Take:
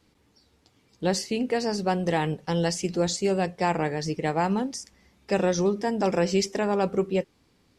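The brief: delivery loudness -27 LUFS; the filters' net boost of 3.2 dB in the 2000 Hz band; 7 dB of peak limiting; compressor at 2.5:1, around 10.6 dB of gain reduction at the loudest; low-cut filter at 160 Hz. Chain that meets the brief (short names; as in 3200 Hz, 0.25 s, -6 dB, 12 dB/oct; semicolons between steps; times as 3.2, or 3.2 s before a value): HPF 160 Hz; bell 2000 Hz +4 dB; compressor 2.5:1, threshold -35 dBFS; gain +10 dB; limiter -15.5 dBFS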